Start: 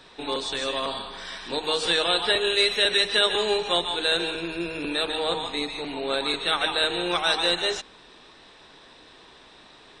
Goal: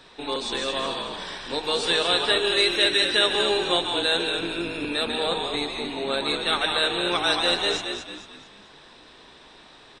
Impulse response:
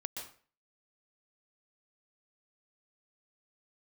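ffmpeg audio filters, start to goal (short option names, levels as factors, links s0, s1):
-filter_complex "[0:a]asplit=6[s0][s1][s2][s3][s4][s5];[s1]adelay=223,afreqshift=-51,volume=0.473[s6];[s2]adelay=446,afreqshift=-102,volume=0.195[s7];[s3]adelay=669,afreqshift=-153,volume=0.0794[s8];[s4]adelay=892,afreqshift=-204,volume=0.0327[s9];[s5]adelay=1115,afreqshift=-255,volume=0.0133[s10];[s0][s6][s7][s8][s9][s10]amix=inputs=6:normalize=0"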